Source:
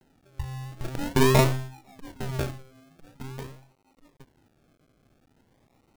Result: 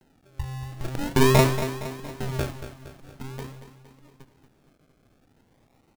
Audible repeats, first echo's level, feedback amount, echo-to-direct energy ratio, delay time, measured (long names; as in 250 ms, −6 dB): 5, −11.0 dB, 51%, −9.5 dB, 232 ms